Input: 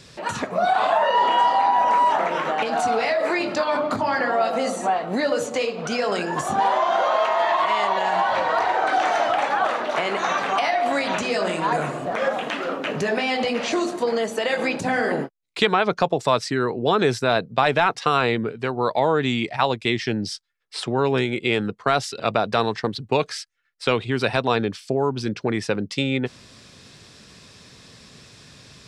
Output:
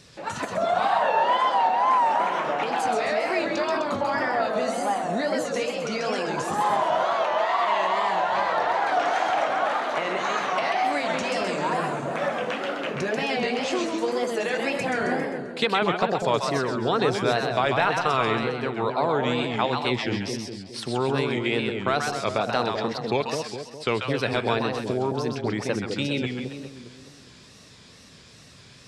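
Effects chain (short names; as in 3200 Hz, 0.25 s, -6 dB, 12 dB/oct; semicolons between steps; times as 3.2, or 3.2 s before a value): split-band echo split 690 Hz, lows 0.206 s, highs 0.132 s, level -4 dB; wow and flutter 120 cents; gain -4.5 dB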